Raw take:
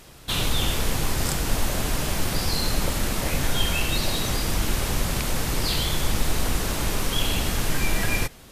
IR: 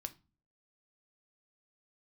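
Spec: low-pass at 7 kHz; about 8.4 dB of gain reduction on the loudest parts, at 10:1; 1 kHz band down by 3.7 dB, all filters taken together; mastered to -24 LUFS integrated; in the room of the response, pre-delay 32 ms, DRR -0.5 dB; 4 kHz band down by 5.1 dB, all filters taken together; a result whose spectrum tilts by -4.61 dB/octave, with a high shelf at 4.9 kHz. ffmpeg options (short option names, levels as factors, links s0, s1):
-filter_complex "[0:a]lowpass=7000,equalizer=f=1000:t=o:g=-4.5,equalizer=f=4000:t=o:g=-4,highshelf=f=4900:g=-4,acompressor=threshold=0.0562:ratio=10,asplit=2[s0][s1];[1:a]atrim=start_sample=2205,adelay=32[s2];[s1][s2]afir=irnorm=-1:irlink=0,volume=1.5[s3];[s0][s3]amix=inputs=2:normalize=0,volume=2"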